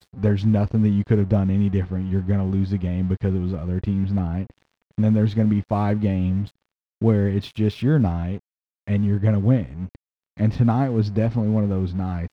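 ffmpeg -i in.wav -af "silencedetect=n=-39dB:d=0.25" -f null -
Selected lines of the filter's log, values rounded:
silence_start: 4.51
silence_end: 4.98 | silence_duration: 0.47
silence_start: 6.49
silence_end: 7.02 | silence_duration: 0.52
silence_start: 8.39
silence_end: 8.88 | silence_duration: 0.48
silence_start: 9.96
silence_end: 10.37 | silence_duration: 0.42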